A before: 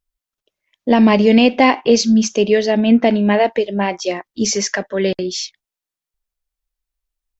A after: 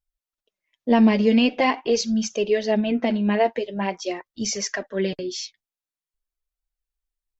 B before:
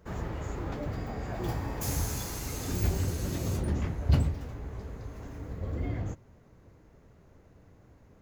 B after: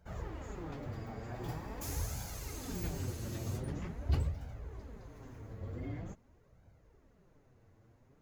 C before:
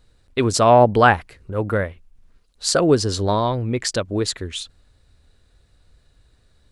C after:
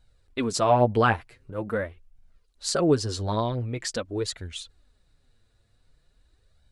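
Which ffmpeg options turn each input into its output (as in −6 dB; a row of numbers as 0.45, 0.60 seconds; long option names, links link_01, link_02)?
-af "flanger=delay=1.3:depth=7.7:regen=17:speed=0.45:shape=sinusoidal,volume=-4dB"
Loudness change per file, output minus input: −7.0, −8.0, −7.0 LU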